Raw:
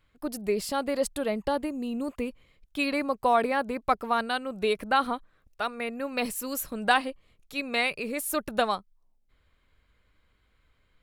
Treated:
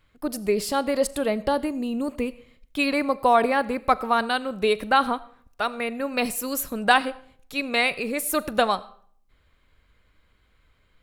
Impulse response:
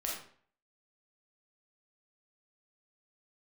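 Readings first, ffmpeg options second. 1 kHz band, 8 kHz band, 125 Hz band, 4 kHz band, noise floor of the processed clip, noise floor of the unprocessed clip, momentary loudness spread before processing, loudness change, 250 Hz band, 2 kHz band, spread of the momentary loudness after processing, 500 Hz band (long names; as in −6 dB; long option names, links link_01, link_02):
+4.5 dB, +4.5 dB, can't be measured, +4.5 dB, −64 dBFS, −69 dBFS, 9 LU, +4.5 dB, +4.5 dB, +4.5 dB, 10 LU, +4.5 dB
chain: -filter_complex "[0:a]asplit=2[link_01][link_02];[1:a]atrim=start_sample=2205,adelay=40[link_03];[link_02][link_03]afir=irnorm=-1:irlink=0,volume=-20dB[link_04];[link_01][link_04]amix=inputs=2:normalize=0,volume=4.5dB"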